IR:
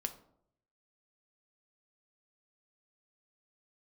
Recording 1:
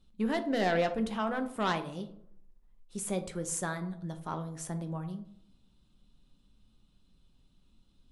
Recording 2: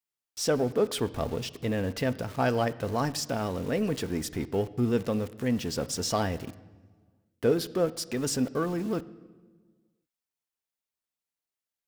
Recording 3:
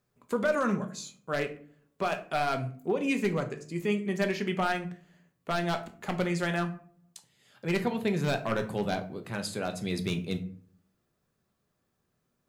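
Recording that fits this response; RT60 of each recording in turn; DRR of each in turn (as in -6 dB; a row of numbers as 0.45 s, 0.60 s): 1; 0.70 s, 1.5 s, 0.50 s; 7.0 dB, 13.5 dB, 5.5 dB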